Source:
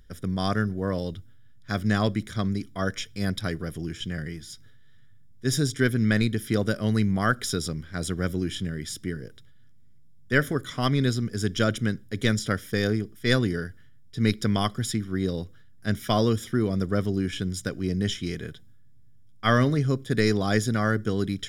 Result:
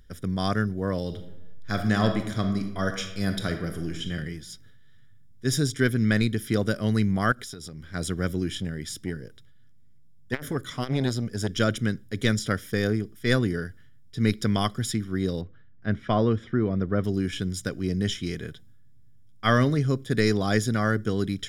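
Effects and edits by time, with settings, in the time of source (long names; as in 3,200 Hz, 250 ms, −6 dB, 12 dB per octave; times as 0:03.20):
0:01.03–0:04.13: thrown reverb, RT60 0.91 s, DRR 5.5 dB
0:07.32–0:07.94: downward compressor 10 to 1, threshold −35 dBFS
0:08.57–0:11.56: saturating transformer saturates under 600 Hz
0:12.66–0:14.33: dynamic equaliser 4,400 Hz, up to −4 dB, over −42 dBFS, Q 0.98
0:15.41–0:17.04: low-pass filter 2,200 Hz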